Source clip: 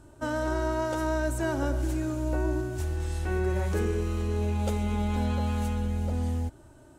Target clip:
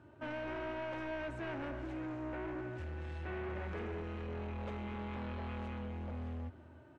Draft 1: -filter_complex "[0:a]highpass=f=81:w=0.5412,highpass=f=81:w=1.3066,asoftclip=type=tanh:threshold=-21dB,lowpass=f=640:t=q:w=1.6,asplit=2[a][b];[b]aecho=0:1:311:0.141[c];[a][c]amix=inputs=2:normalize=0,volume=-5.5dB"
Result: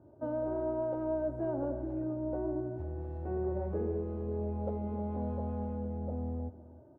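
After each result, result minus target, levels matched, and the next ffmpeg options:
2000 Hz band -19.5 dB; soft clip: distortion -13 dB
-filter_complex "[0:a]highpass=f=81:w=0.5412,highpass=f=81:w=1.3066,asoftclip=type=tanh:threshold=-21dB,lowpass=f=2.4k:t=q:w=1.6,asplit=2[a][b];[b]aecho=0:1:311:0.141[c];[a][c]amix=inputs=2:normalize=0,volume=-5.5dB"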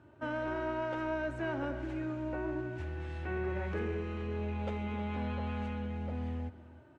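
soft clip: distortion -13 dB
-filter_complex "[0:a]highpass=f=81:w=0.5412,highpass=f=81:w=1.3066,asoftclip=type=tanh:threshold=-33dB,lowpass=f=2.4k:t=q:w=1.6,asplit=2[a][b];[b]aecho=0:1:311:0.141[c];[a][c]amix=inputs=2:normalize=0,volume=-5.5dB"

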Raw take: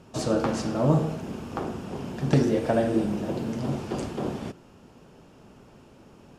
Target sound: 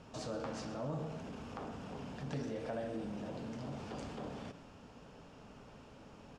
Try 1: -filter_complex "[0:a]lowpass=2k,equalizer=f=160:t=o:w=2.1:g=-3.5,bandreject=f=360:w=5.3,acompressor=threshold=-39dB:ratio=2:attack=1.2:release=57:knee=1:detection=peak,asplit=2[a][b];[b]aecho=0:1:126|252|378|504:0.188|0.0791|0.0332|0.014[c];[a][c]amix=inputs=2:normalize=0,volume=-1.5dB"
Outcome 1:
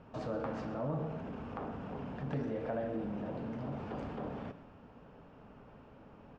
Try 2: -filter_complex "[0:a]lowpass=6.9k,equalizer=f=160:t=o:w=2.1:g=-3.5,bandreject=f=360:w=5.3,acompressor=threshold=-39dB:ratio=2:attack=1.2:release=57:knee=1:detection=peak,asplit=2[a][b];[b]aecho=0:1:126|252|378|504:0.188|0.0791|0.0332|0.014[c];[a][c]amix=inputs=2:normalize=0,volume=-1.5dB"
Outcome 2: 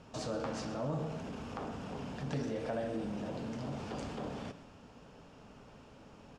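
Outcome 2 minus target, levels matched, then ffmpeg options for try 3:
compressor: peak gain reduction -3.5 dB
-filter_complex "[0:a]lowpass=6.9k,equalizer=f=160:t=o:w=2.1:g=-3.5,bandreject=f=360:w=5.3,acompressor=threshold=-46dB:ratio=2:attack=1.2:release=57:knee=1:detection=peak,asplit=2[a][b];[b]aecho=0:1:126|252|378|504:0.188|0.0791|0.0332|0.014[c];[a][c]amix=inputs=2:normalize=0,volume=-1.5dB"

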